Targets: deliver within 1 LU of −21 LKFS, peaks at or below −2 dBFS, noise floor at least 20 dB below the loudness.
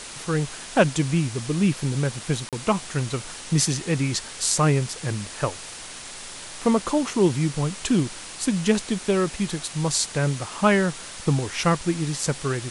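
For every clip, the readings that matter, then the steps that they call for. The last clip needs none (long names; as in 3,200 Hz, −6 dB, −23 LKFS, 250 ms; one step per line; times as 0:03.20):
number of dropouts 1; longest dropout 37 ms; background noise floor −39 dBFS; target noise floor −44 dBFS; integrated loudness −24.0 LKFS; sample peak −3.0 dBFS; target loudness −21.0 LKFS
→ repair the gap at 0:02.49, 37 ms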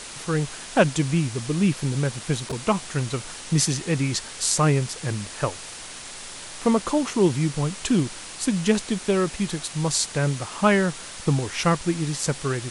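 number of dropouts 0; background noise floor −39 dBFS; target noise floor −44 dBFS
→ noise reduction from a noise print 6 dB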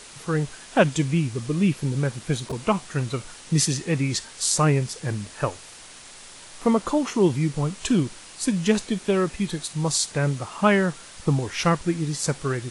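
background noise floor −44 dBFS; target noise floor −45 dBFS
→ noise reduction from a noise print 6 dB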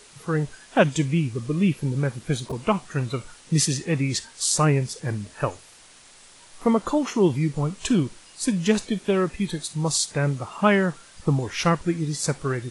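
background noise floor −50 dBFS; integrated loudness −24.5 LKFS; sample peak −3.0 dBFS; target loudness −21.0 LKFS
→ level +3.5 dB
brickwall limiter −2 dBFS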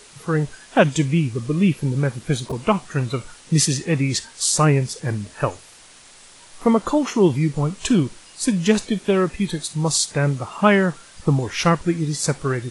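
integrated loudness −21.0 LKFS; sample peak −2.0 dBFS; background noise floor −47 dBFS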